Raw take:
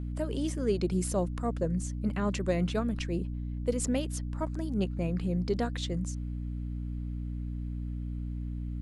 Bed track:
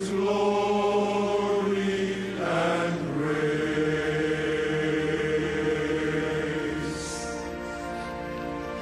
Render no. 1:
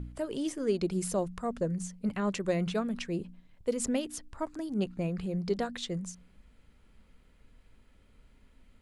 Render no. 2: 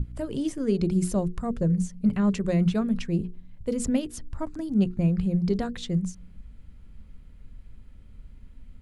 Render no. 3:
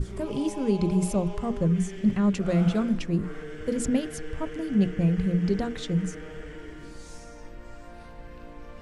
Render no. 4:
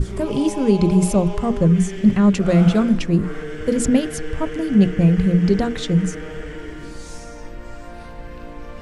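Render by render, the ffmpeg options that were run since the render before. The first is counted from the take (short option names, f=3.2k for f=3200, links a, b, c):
-af "bandreject=f=60:t=h:w=4,bandreject=f=120:t=h:w=4,bandreject=f=180:t=h:w=4,bandreject=f=240:t=h:w=4,bandreject=f=300:t=h:w=4"
-af "bass=f=250:g=15,treble=f=4k:g=0,bandreject=f=60:t=h:w=6,bandreject=f=120:t=h:w=6,bandreject=f=180:t=h:w=6,bandreject=f=240:t=h:w=6,bandreject=f=300:t=h:w=6,bandreject=f=360:t=h:w=6,bandreject=f=420:t=h:w=6,bandreject=f=480:t=h:w=6"
-filter_complex "[1:a]volume=-14dB[a];[0:a][a]amix=inputs=2:normalize=0"
-af "volume=8.5dB"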